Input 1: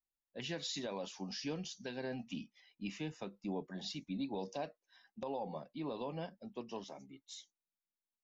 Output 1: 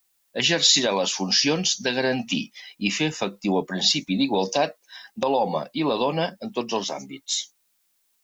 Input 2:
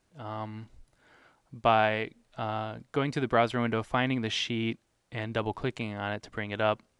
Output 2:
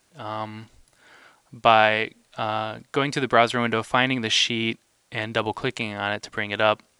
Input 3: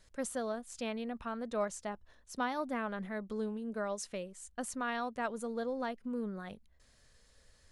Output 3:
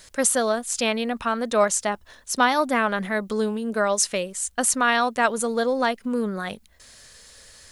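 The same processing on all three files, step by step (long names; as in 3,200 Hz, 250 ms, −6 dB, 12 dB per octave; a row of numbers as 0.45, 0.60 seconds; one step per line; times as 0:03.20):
spectral tilt +2 dB per octave
loudness normalisation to −23 LKFS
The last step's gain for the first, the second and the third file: +20.0, +7.5, +16.0 decibels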